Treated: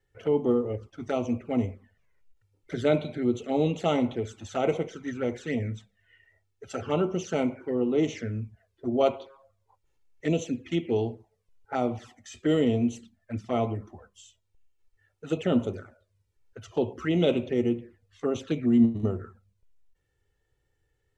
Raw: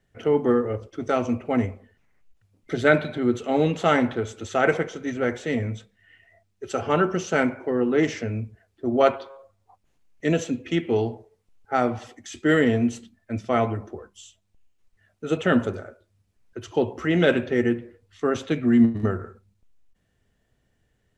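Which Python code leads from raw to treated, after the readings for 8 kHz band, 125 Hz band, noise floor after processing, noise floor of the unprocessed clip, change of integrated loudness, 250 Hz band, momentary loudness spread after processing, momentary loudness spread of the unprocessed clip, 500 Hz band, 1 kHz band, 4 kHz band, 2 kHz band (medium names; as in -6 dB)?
no reading, -3.0 dB, -75 dBFS, -71 dBFS, -4.5 dB, -3.5 dB, 12 LU, 13 LU, -4.0 dB, -7.5 dB, -4.0 dB, -13.0 dB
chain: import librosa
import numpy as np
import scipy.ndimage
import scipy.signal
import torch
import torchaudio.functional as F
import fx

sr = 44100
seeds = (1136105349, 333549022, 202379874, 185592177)

y = fx.env_flanger(x, sr, rest_ms=2.3, full_db=-20.0)
y = y * librosa.db_to_amplitude(-3.0)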